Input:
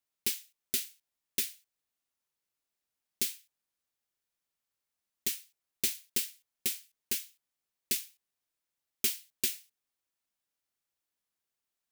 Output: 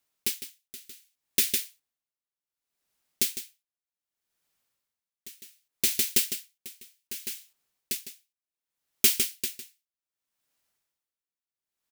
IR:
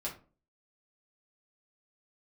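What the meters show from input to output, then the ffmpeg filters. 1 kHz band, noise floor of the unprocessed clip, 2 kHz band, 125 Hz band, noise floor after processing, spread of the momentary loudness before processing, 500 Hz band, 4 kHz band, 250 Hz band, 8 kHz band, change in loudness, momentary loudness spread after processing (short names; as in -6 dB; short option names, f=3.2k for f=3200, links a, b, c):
n/a, under -85 dBFS, +5.5 dB, +5.5 dB, under -85 dBFS, 10 LU, +5.5 dB, +5.5 dB, +5.5 dB, +5.5 dB, +7.0 dB, 22 LU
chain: -af "aecho=1:1:155:0.562,aeval=exprs='val(0)*pow(10,-22*(0.5-0.5*cos(2*PI*0.66*n/s))/20)':c=same,volume=9dB"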